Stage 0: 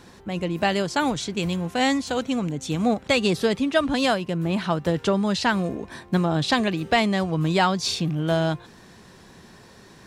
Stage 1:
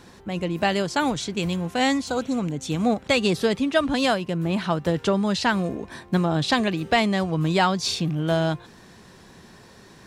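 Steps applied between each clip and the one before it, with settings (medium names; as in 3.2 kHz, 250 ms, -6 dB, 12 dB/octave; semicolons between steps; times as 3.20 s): spectral replace 2.08–2.36 s, 1.6–3.7 kHz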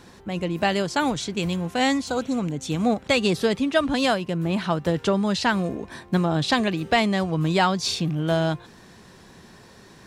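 no audible change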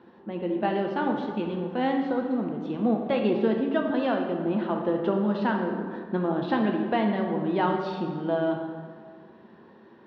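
cabinet simulation 170–2900 Hz, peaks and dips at 220 Hz +8 dB, 350 Hz +8 dB, 500 Hz +5 dB, 890 Hz +5 dB, 2.3 kHz -8 dB; plate-style reverb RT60 1.8 s, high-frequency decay 0.6×, DRR 2 dB; trim -8.5 dB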